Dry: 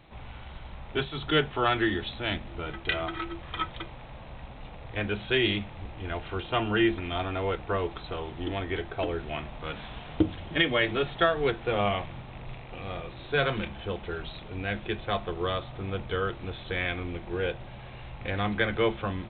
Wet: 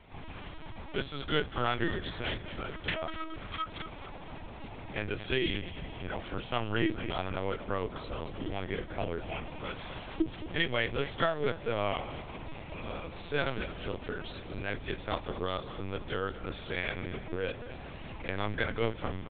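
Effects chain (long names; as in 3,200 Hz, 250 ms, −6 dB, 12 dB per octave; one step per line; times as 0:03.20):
in parallel at −1 dB: downward compressor, threshold −37 dBFS, peak gain reduction 18.5 dB
on the sum: repeating echo 227 ms, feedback 44%, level −13 dB
linear-prediction vocoder at 8 kHz pitch kept
level −6.5 dB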